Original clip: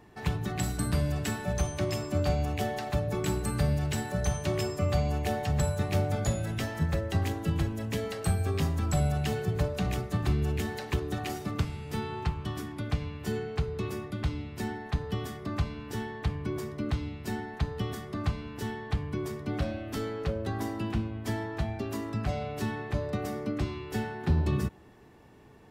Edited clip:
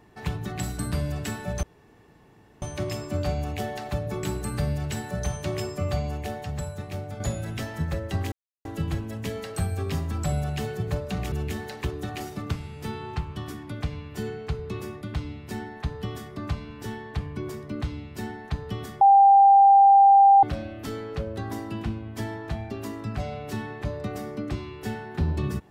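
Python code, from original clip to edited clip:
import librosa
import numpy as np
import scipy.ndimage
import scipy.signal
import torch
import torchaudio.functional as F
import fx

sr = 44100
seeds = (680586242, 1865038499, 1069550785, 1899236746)

y = fx.edit(x, sr, fx.insert_room_tone(at_s=1.63, length_s=0.99),
    fx.fade_out_to(start_s=4.93, length_s=1.28, curve='qua', floor_db=-7.0),
    fx.insert_silence(at_s=7.33, length_s=0.33),
    fx.cut(start_s=10.0, length_s=0.41),
    fx.bleep(start_s=18.1, length_s=1.42, hz=792.0, db=-11.0), tone=tone)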